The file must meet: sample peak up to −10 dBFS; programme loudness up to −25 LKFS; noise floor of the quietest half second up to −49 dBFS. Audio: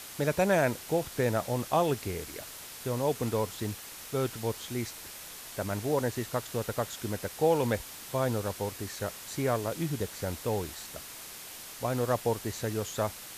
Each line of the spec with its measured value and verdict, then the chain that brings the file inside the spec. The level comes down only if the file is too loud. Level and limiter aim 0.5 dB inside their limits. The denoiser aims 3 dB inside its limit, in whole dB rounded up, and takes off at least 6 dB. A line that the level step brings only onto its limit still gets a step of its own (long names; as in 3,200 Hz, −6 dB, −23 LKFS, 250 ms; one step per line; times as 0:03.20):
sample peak −12.5 dBFS: in spec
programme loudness −32.0 LKFS: in spec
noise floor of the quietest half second −45 dBFS: out of spec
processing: broadband denoise 7 dB, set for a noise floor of −45 dBFS